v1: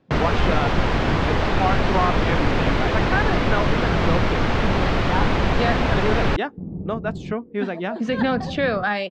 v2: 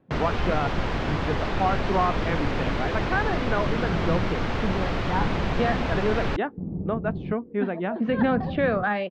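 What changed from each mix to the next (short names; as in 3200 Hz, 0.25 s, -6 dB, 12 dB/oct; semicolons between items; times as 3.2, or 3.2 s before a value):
speech: add air absorption 440 m; first sound -6.5 dB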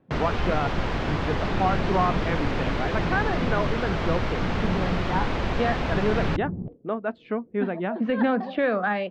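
second sound: entry -2.15 s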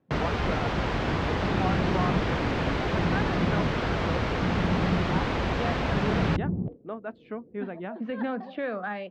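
speech -8.0 dB; second sound +3.0 dB; master: add HPF 44 Hz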